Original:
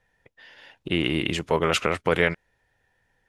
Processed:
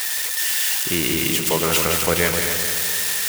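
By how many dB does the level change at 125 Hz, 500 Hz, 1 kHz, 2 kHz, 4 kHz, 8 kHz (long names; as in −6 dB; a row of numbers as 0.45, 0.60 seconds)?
+2.5, +1.5, +2.5, +5.0, +9.0, +21.5 decibels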